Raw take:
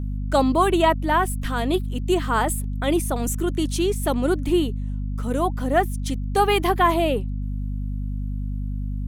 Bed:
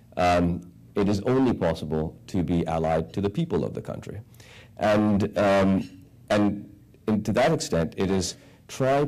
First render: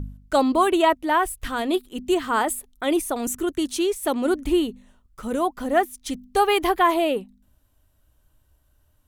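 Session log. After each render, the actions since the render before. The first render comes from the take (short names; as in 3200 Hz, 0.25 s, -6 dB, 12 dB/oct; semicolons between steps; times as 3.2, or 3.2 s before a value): de-hum 50 Hz, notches 5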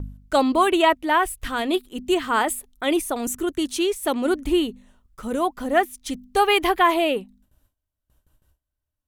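gate with hold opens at -51 dBFS; dynamic EQ 2500 Hz, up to +5 dB, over -36 dBFS, Q 1.1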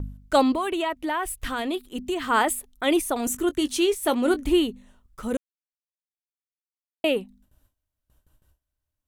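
0.54–2.26 compressor 4:1, threshold -24 dBFS; 3.14–4.49 doubler 20 ms -12 dB; 5.37–7.04 mute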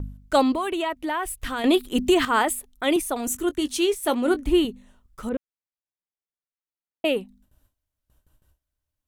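1.64–2.25 gain +9.5 dB; 2.96–4.65 three-band expander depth 40%; 5.29–7.05 air absorption 410 m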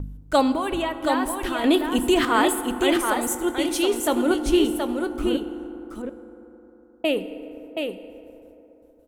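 echo 0.725 s -5 dB; FDN reverb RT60 3.7 s, high-frequency decay 0.35×, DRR 10 dB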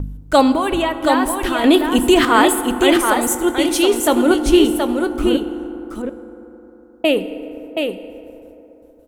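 gain +7 dB; limiter -1 dBFS, peak gain reduction 1 dB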